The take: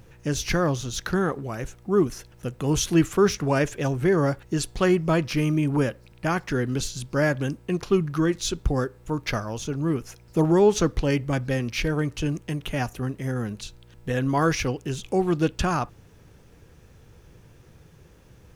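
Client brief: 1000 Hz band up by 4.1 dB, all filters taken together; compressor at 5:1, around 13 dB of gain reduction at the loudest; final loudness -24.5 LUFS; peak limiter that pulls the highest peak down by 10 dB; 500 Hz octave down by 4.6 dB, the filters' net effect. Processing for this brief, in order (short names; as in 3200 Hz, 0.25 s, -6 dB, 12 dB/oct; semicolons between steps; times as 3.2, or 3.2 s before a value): bell 500 Hz -8 dB; bell 1000 Hz +7.5 dB; compressor 5:1, threshold -32 dBFS; gain +14.5 dB; limiter -14.5 dBFS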